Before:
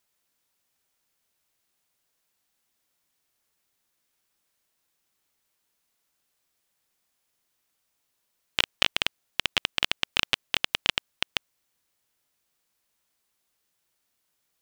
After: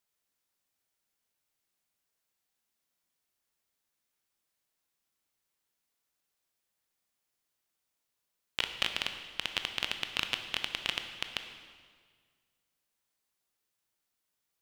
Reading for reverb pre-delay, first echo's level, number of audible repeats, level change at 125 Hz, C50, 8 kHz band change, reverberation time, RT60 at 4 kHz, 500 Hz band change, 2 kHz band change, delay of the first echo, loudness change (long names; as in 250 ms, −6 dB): 18 ms, no echo audible, no echo audible, −7.0 dB, 7.5 dB, −7.0 dB, 1.8 s, 1.5 s, −7.0 dB, −7.0 dB, no echo audible, −7.0 dB